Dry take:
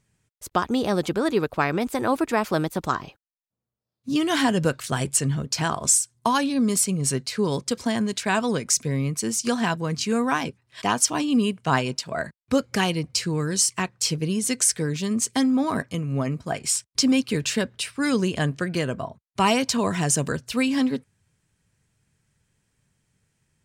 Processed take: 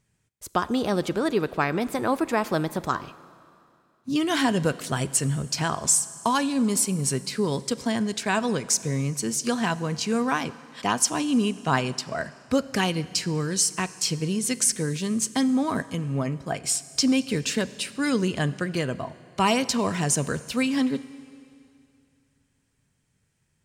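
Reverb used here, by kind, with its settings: Schroeder reverb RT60 2.5 s, combs from 32 ms, DRR 16.5 dB; gain -1.5 dB

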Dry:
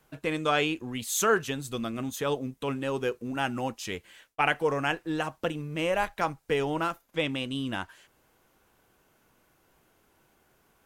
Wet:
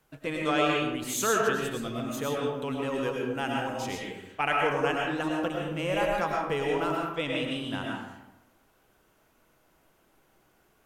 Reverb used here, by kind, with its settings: digital reverb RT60 1 s, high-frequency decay 0.5×, pre-delay 70 ms, DRR -2 dB; gain -3.5 dB

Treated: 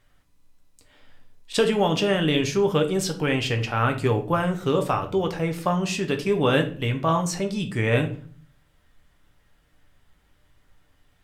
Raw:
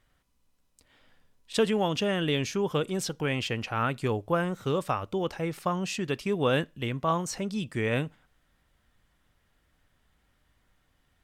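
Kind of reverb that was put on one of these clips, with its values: shoebox room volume 39 m³, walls mixed, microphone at 0.35 m; gain +4 dB

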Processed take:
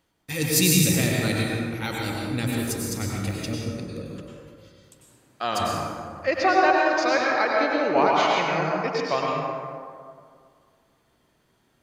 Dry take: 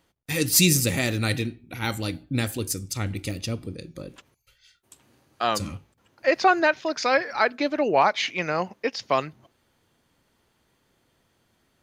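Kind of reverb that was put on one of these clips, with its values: plate-style reverb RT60 2.1 s, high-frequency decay 0.45×, pre-delay 85 ms, DRR -3 dB; gain -3.5 dB

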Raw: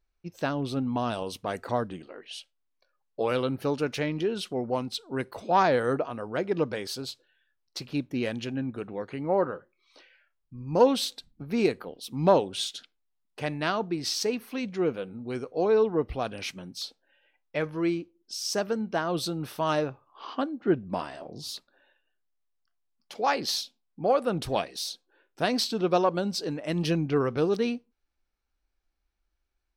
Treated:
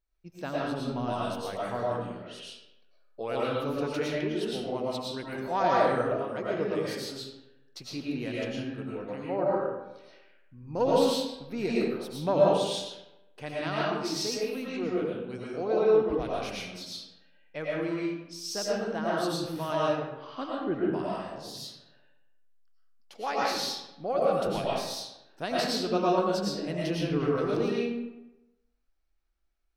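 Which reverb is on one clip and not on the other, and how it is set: digital reverb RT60 0.95 s, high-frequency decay 0.65×, pre-delay 70 ms, DRR -6 dB; gain -8 dB

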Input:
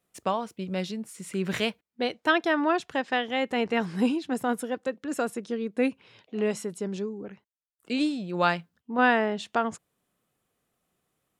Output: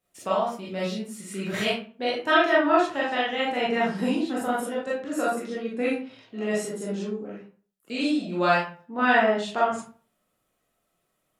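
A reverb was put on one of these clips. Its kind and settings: digital reverb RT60 0.42 s, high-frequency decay 0.65×, pre-delay 0 ms, DRR -7.5 dB; gain -5 dB

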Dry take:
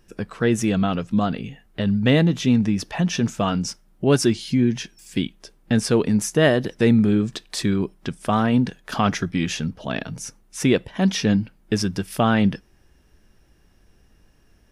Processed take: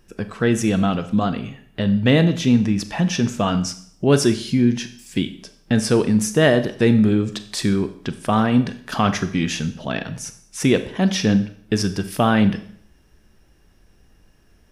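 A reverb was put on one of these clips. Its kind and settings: Schroeder reverb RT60 0.6 s, combs from 29 ms, DRR 10.5 dB; gain +1.5 dB

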